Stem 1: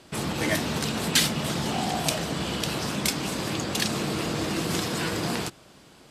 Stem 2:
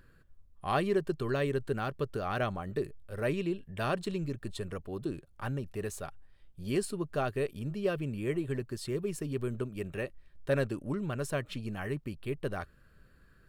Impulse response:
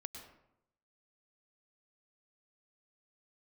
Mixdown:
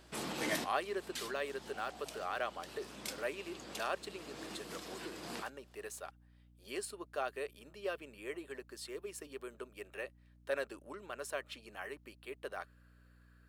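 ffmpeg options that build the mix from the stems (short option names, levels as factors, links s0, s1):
-filter_complex "[0:a]volume=0.355[s0];[1:a]highpass=530,volume=0.668,asplit=2[s1][s2];[s2]apad=whole_len=269379[s3];[s0][s3]sidechaincompress=threshold=0.00178:ratio=3:attack=6.7:release=463[s4];[s4][s1]amix=inputs=2:normalize=0,highpass=240,aeval=exprs='val(0)+0.000794*(sin(2*PI*60*n/s)+sin(2*PI*2*60*n/s)/2+sin(2*PI*3*60*n/s)/3+sin(2*PI*4*60*n/s)/4+sin(2*PI*5*60*n/s)/5)':c=same"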